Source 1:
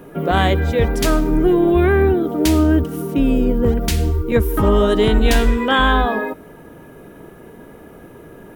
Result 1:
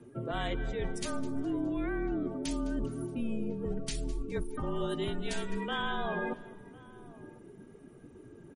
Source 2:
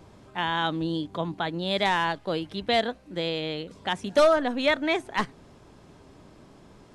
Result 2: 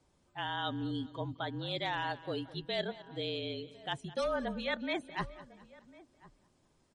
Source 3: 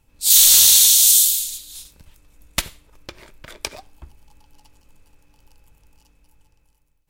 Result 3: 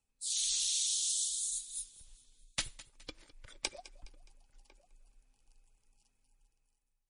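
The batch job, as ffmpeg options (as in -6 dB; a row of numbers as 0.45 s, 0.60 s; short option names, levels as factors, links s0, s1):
-filter_complex "[0:a]acrossover=split=6600[s0][s1];[s1]acompressor=threshold=0.0501:ratio=4:attack=1:release=60[s2];[s0][s2]amix=inputs=2:normalize=0,aemphasis=mode=production:type=50fm,afftdn=nr=13:nf=-30,areverse,acompressor=threshold=0.0631:ratio=6,areverse,asplit=2[s3][s4];[s4]adelay=1050,volume=0.1,highshelf=f=4000:g=-23.6[s5];[s3][s5]amix=inputs=2:normalize=0,afreqshift=-38,asplit=2[s6][s7];[s7]aecho=0:1:208|416|624:0.126|0.0529|0.0222[s8];[s6][s8]amix=inputs=2:normalize=0,volume=0.473" -ar 44100 -c:a libmp3lame -b:a 40k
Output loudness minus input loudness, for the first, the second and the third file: -19.0 LU, -10.5 LU, -23.0 LU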